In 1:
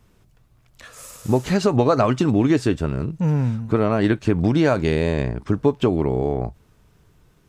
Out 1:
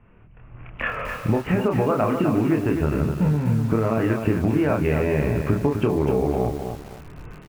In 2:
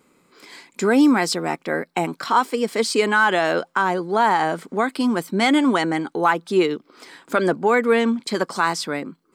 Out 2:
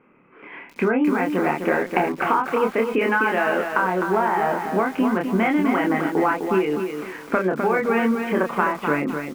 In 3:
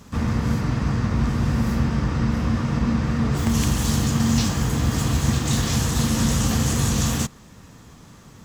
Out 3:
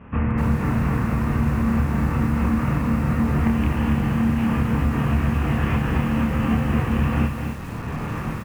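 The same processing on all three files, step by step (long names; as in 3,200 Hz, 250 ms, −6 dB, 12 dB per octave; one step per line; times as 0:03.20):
double-tracking delay 27 ms −3 dB
automatic gain control gain up to 16.5 dB
elliptic low-pass filter 2,700 Hz, stop band 40 dB
downward compressor 12 to 1, threshold −19 dBFS
feedback echo at a low word length 255 ms, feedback 35%, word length 7 bits, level −6 dB
level +2 dB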